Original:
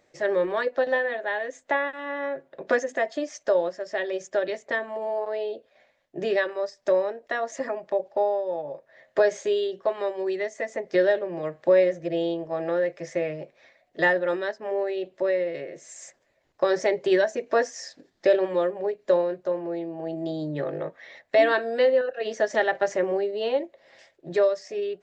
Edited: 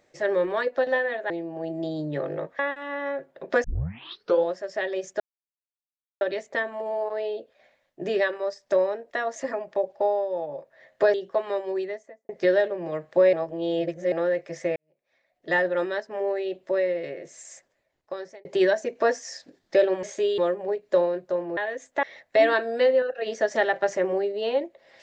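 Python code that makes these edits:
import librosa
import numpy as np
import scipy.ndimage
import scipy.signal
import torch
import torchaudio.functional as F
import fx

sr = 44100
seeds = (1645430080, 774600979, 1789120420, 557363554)

y = fx.studio_fade_out(x, sr, start_s=10.17, length_s=0.63)
y = fx.edit(y, sr, fx.swap(start_s=1.3, length_s=0.46, other_s=19.73, other_length_s=1.29),
    fx.tape_start(start_s=2.81, length_s=0.81),
    fx.insert_silence(at_s=4.37, length_s=1.01),
    fx.move(start_s=9.3, length_s=0.35, to_s=18.54),
    fx.reverse_span(start_s=11.84, length_s=0.79),
    fx.fade_in_span(start_s=13.27, length_s=0.9, curve='qua'),
    fx.fade_out_span(start_s=15.82, length_s=1.14), tone=tone)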